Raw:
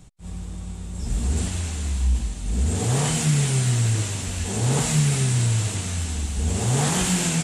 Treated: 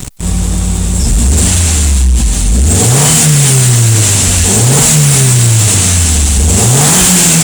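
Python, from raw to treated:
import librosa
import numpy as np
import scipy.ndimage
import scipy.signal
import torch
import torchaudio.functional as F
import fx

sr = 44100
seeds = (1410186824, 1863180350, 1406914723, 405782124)

y = fx.high_shelf(x, sr, hz=6000.0, db=11.0)
y = fx.leveller(y, sr, passes=3)
y = fx.env_flatten(y, sr, amount_pct=50)
y = y * librosa.db_to_amplitude(4.0)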